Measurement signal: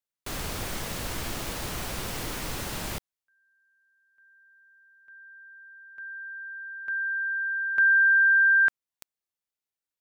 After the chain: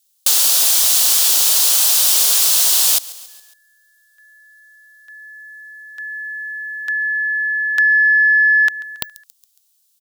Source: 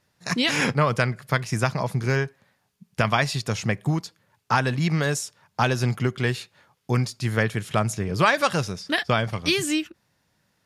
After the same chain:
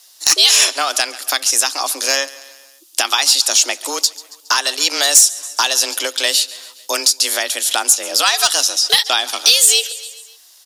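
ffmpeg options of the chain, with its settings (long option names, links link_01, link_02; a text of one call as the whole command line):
ffmpeg -i in.wav -filter_complex "[0:a]asplit=2[link_01][link_02];[link_02]aecho=0:1:138|276|414|552:0.075|0.0405|0.0219|0.0118[link_03];[link_01][link_03]amix=inputs=2:normalize=0,alimiter=limit=-13dB:level=0:latency=1:release=467,highpass=490,aexciter=amount=8.1:drive=2.5:freq=2900,afreqshift=140,asplit=2[link_04][link_05];[link_05]acompressor=threshold=-31dB:ratio=6:attack=53:release=280:detection=peak,volume=0.5dB[link_06];[link_04][link_06]amix=inputs=2:normalize=0,aeval=exprs='2.11*sin(PI/2*2.51*val(0)/2.11)':channel_layout=same,volume=-7.5dB" out.wav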